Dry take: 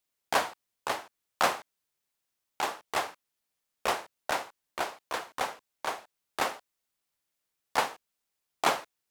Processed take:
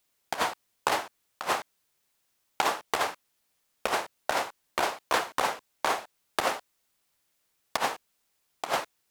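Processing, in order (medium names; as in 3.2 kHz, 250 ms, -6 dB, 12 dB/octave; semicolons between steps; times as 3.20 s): compressor with a negative ratio -31 dBFS, ratio -0.5; trim +5.5 dB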